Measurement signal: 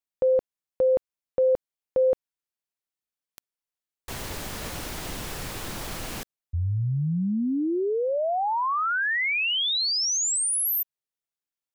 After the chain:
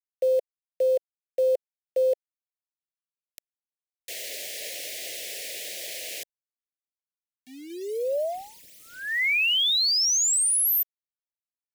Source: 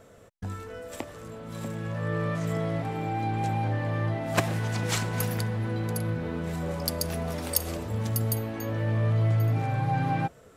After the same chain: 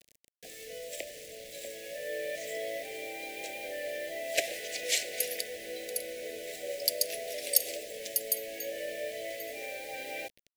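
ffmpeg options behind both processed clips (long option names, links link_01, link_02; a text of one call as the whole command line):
ffmpeg -i in.wav -af "highpass=frequency=530:width=0.5412,highpass=frequency=530:width=1.3066,acontrast=56,acrusher=bits=6:mix=0:aa=0.000001,asuperstop=centerf=1100:order=8:qfactor=0.86,volume=-3.5dB" out.wav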